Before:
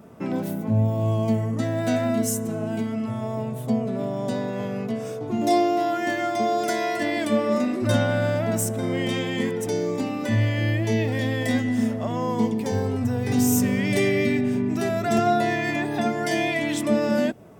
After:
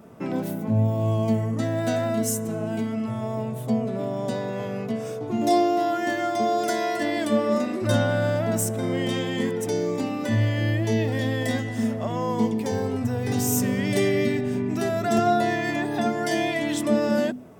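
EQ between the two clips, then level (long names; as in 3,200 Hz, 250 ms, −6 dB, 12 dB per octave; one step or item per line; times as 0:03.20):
mains-hum notches 50/100/150/200/250 Hz
dynamic equaliser 2,300 Hz, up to −6 dB, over −45 dBFS, Q 4.2
0.0 dB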